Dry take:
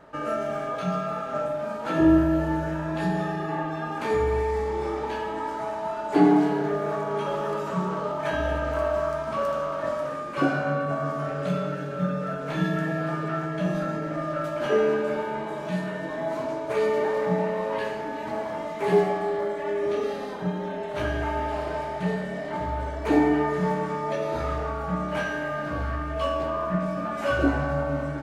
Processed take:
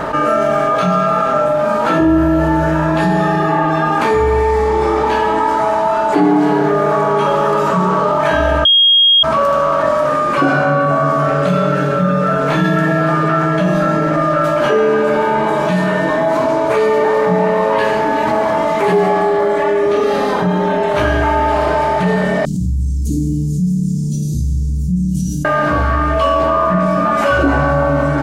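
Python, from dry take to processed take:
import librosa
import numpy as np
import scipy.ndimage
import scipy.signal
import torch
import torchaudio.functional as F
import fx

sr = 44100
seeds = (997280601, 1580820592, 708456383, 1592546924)

y = fx.ellip_bandstop(x, sr, low_hz=190.0, high_hz=6500.0, order=3, stop_db=60, at=(22.45, 25.45))
y = fx.edit(y, sr, fx.bleep(start_s=8.65, length_s=0.58, hz=3260.0, db=-9.0), tone=tone)
y = fx.peak_eq(y, sr, hz=1100.0, db=4.0, octaves=0.81)
y = fx.env_flatten(y, sr, amount_pct=70)
y = F.gain(torch.from_numpy(y), 2.5).numpy()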